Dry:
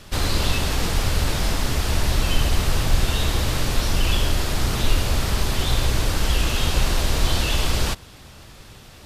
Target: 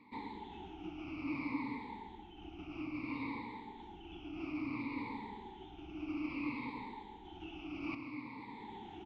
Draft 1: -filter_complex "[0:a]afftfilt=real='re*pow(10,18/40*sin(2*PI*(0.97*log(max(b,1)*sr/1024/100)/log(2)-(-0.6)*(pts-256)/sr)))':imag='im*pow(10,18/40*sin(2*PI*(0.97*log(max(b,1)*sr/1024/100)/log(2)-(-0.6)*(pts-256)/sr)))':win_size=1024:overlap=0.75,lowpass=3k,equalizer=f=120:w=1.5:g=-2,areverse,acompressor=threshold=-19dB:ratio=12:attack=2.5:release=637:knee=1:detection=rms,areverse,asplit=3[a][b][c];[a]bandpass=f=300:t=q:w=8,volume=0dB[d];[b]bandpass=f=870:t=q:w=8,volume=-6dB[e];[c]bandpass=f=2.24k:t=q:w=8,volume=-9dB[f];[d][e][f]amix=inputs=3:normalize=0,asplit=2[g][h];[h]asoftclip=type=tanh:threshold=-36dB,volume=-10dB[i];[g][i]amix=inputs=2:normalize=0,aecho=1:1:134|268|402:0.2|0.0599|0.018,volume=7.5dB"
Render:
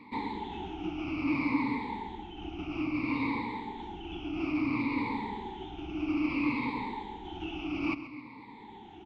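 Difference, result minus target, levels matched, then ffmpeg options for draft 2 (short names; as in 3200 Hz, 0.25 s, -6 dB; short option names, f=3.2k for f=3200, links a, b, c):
compressor: peak gain reduction -10 dB
-filter_complex "[0:a]afftfilt=real='re*pow(10,18/40*sin(2*PI*(0.97*log(max(b,1)*sr/1024/100)/log(2)-(-0.6)*(pts-256)/sr)))':imag='im*pow(10,18/40*sin(2*PI*(0.97*log(max(b,1)*sr/1024/100)/log(2)-(-0.6)*(pts-256)/sr)))':win_size=1024:overlap=0.75,lowpass=3k,equalizer=f=120:w=1.5:g=-2,areverse,acompressor=threshold=-30dB:ratio=12:attack=2.5:release=637:knee=1:detection=rms,areverse,asplit=3[a][b][c];[a]bandpass=f=300:t=q:w=8,volume=0dB[d];[b]bandpass=f=870:t=q:w=8,volume=-6dB[e];[c]bandpass=f=2.24k:t=q:w=8,volume=-9dB[f];[d][e][f]amix=inputs=3:normalize=0,asplit=2[g][h];[h]asoftclip=type=tanh:threshold=-36dB,volume=-10dB[i];[g][i]amix=inputs=2:normalize=0,aecho=1:1:134|268|402:0.2|0.0599|0.018,volume=7.5dB"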